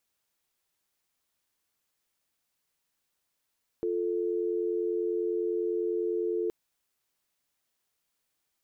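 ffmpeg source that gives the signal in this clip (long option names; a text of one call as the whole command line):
ffmpeg -f lavfi -i "aevalsrc='0.0335*(sin(2*PI*350*t)+sin(2*PI*440*t))':duration=2.67:sample_rate=44100" out.wav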